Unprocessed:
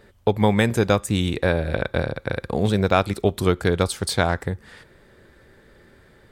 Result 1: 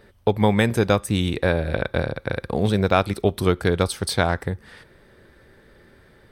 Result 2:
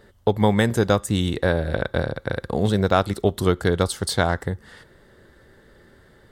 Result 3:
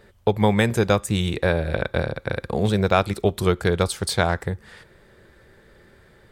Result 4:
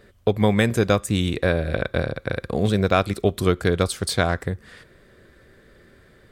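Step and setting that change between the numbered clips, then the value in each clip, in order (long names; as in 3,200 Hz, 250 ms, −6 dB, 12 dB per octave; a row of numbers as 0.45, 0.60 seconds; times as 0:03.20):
notch filter, centre frequency: 7,100, 2,400, 270, 870 Hertz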